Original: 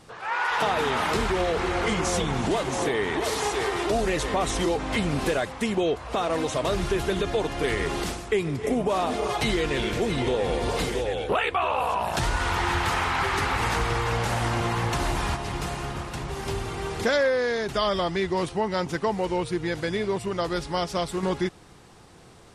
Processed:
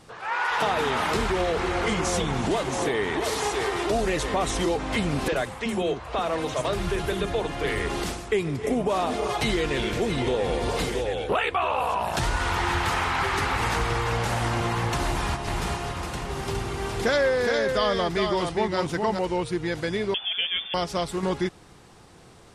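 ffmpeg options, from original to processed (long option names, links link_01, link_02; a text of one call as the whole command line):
ffmpeg -i in.wav -filter_complex "[0:a]asettb=1/sr,asplit=3[link_01][link_02][link_03];[link_01]atrim=end=5.284[link_04];[link_02]atrim=start=5.28:end=7.9,asetpts=PTS-STARTPTS,afade=type=in:duration=0.004:curve=qsin,afade=type=out:start_time=2.616:duration=0.004:curve=qsin,acrossover=split=310|5900[link_05][link_06][link_07];[link_05]adelay=40[link_08];[link_07]adelay=80[link_09];[link_08][link_06][link_09]amix=inputs=3:normalize=0,atrim=end_sample=115542[link_10];[link_03]atrim=start=7.896[link_11];[link_04][link_10]acrossfade=duration=0.004:curve1=hsin:curve2=qsin[link_12];[link_12][link_11]acrossfade=duration=0.004:curve1=qsin:curve2=hsin,asettb=1/sr,asplit=3[link_13][link_14][link_15];[link_13]atrim=end=15.064[link_16];[link_14]atrim=start=15.06:end=19.19,asetpts=PTS-STARTPTS,afade=type=in:duration=0.004:curve=qsin,afade=type=out:start_time=4.126:duration=0.004:curve=qsin,aecho=1:1:413:0.596,atrim=end_sample=182133[link_17];[link_15]atrim=start=19.186[link_18];[link_16][link_17]acrossfade=duration=0.004:curve1=hsin:curve2=qsin[link_19];[link_19][link_18]acrossfade=duration=0.004:curve1=qsin:curve2=hsin,asettb=1/sr,asplit=3[link_20][link_21][link_22];[link_20]atrim=end=20.144[link_23];[link_21]atrim=start=20.14:end=20.74,asetpts=PTS-STARTPTS,afade=type=in:duration=0.004:curve=qsin,afade=type=out:start_time=0.596:duration=0.004:curve=qsin,lowpass=frequency=3100:width_type=q:width=0.5098,lowpass=frequency=3100:width_type=q:width=0.6013,lowpass=frequency=3100:width_type=q:width=0.9,lowpass=frequency=3100:width_type=q:width=2.563,afreqshift=-3600[link_24];[link_22]atrim=start=20.736[link_25];[link_23][link_24]acrossfade=duration=0.004:curve1=hsin:curve2=qsin[link_26];[link_26][link_25]acrossfade=duration=0.004:curve1=qsin:curve2=hsin" out.wav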